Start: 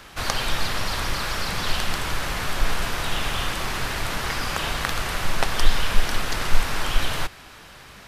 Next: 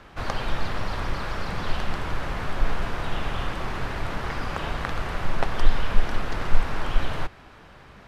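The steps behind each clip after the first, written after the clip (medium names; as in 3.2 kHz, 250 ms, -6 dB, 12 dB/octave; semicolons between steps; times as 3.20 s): low-pass 1.1 kHz 6 dB/octave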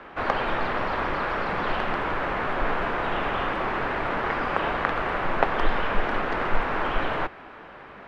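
three-band isolator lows -15 dB, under 230 Hz, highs -21 dB, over 2.9 kHz; trim +7 dB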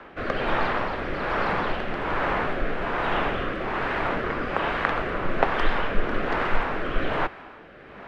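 rotary cabinet horn 1.2 Hz; trim +3 dB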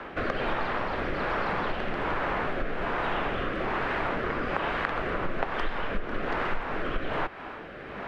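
compression 4:1, threshold -32 dBFS, peak gain reduction 16 dB; trim +5 dB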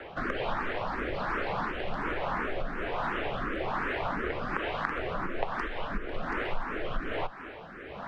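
barber-pole phaser +2.8 Hz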